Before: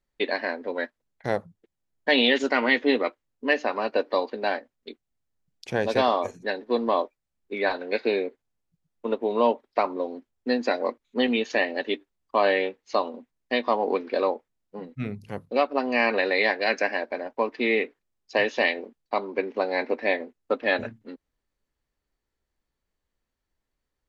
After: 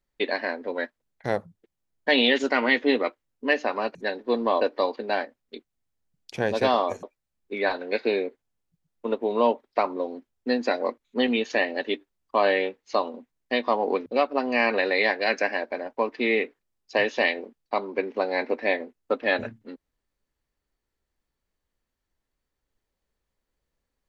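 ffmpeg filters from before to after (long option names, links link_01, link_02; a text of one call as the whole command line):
ffmpeg -i in.wav -filter_complex "[0:a]asplit=5[link_01][link_02][link_03][link_04][link_05];[link_01]atrim=end=3.952[link_06];[link_02]atrim=start=6.368:end=7.032[link_07];[link_03]atrim=start=3.948:end=6.372[link_08];[link_04]atrim=start=7.028:end=14.062[link_09];[link_05]atrim=start=15.458[link_10];[link_06][link_07]acrossfade=duration=0.004:curve1=hsin:curve2=hsin[link_11];[link_11][link_08]acrossfade=duration=0.004:curve1=hsin:curve2=hsin[link_12];[link_12][link_09]acrossfade=duration=0.004:curve1=hsin:curve2=hsin[link_13];[link_13][link_10]acrossfade=duration=0.004:curve1=hsin:curve2=hsin" out.wav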